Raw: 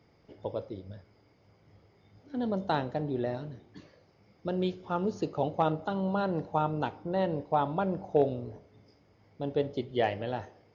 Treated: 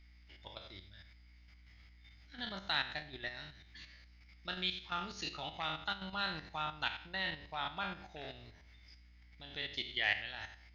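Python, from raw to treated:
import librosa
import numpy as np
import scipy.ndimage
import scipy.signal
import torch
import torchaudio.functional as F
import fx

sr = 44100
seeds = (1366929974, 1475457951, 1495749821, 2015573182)

y = fx.spec_trails(x, sr, decay_s=0.54)
y = fx.level_steps(y, sr, step_db=10)
y = fx.peak_eq(y, sr, hz=470.0, db=-12.0, octaves=0.88)
y = fx.add_hum(y, sr, base_hz=60, snr_db=17)
y = fx.graphic_eq(y, sr, hz=(125, 250, 500, 1000, 2000, 4000), db=(-12, -11, -7, -7, 11, 9))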